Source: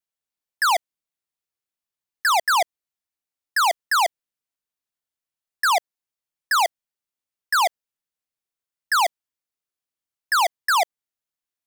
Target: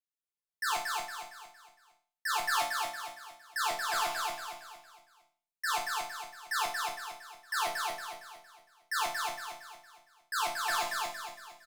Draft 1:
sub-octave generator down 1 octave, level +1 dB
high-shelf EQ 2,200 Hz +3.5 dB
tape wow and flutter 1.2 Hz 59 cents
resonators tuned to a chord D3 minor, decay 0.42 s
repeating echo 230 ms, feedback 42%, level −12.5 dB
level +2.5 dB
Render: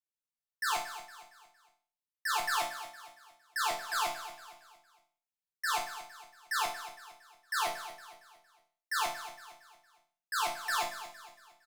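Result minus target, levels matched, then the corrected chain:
echo-to-direct −9.5 dB
sub-octave generator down 1 octave, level +1 dB
high-shelf EQ 2,200 Hz +3.5 dB
tape wow and flutter 1.2 Hz 59 cents
resonators tuned to a chord D3 minor, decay 0.42 s
repeating echo 230 ms, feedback 42%, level −3 dB
level +2.5 dB

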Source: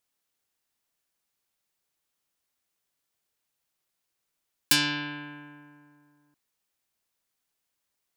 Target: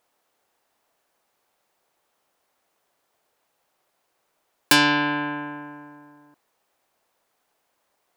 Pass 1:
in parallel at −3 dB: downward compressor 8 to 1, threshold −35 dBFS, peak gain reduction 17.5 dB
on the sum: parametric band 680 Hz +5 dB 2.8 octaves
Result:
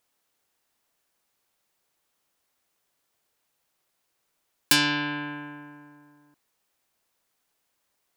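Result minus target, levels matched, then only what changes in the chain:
500 Hz band −5.5 dB
change: parametric band 680 Hz +15.5 dB 2.8 octaves

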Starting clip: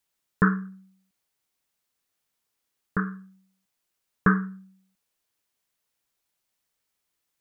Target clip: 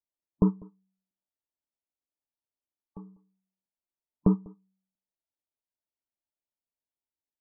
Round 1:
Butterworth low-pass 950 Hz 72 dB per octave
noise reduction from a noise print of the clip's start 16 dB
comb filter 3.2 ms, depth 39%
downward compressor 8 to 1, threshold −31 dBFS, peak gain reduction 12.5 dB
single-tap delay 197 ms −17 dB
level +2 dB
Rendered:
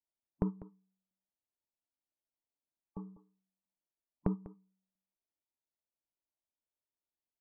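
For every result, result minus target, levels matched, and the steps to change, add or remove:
downward compressor: peak gain reduction +12.5 dB; echo-to-direct +7 dB
remove: downward compressor 8 to 1, threshold −31 dBFS, peak gain reduction 12.5 dB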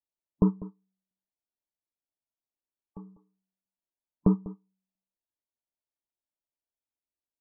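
echo-to-direct +7 dB
change: single-tap delay 197 ms −24 dB

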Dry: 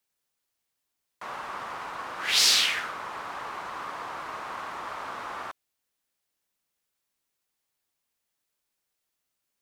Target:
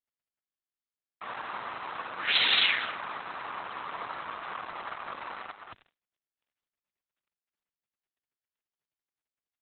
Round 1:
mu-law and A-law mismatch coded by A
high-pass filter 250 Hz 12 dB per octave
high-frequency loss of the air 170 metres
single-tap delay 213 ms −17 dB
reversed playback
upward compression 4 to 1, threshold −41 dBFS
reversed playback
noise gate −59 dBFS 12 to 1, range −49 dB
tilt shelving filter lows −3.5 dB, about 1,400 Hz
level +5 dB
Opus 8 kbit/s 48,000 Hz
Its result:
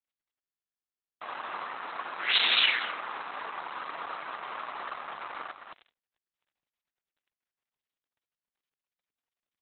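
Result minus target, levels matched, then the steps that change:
125 Hz band −7.5 dB
change: high-pass filter 96 Hz 12 dB per octave

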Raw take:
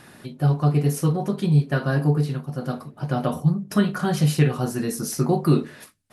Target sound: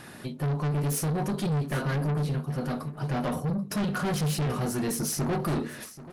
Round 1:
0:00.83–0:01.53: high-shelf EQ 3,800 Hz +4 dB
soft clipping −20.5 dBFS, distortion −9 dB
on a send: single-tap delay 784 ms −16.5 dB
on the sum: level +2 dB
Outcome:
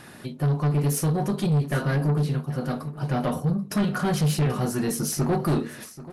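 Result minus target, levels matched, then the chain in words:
soft clipping: distortion −4 dB
0:00.83–0:01.53: high-shelf EQ 3,800 Hz +4 dB
soft clipping −27 dBFS, distortion −5 dB
on a send: single-tap delay 784 ms −16.5 dB
on the sum: level +2 dB

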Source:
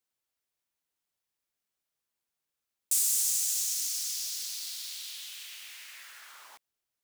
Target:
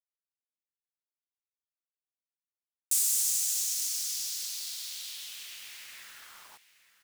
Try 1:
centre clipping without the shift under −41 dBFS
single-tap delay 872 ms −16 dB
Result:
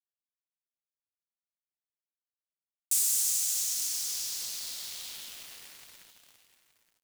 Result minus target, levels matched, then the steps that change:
centre clipping without the shift: distortion +13 dB
change: centre clipping without the shift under −51.5 dBFS

